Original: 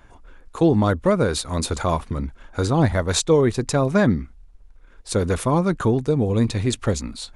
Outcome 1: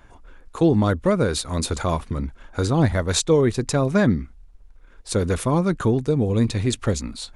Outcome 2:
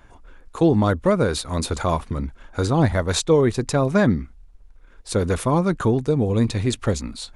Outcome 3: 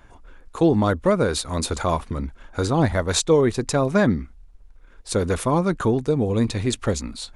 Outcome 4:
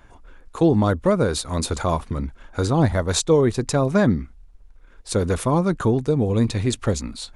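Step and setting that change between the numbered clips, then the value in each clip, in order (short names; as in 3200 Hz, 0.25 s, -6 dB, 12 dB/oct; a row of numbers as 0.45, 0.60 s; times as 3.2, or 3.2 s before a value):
dynamic EQ, frequency: 860, 7200, 120, 2200 Hz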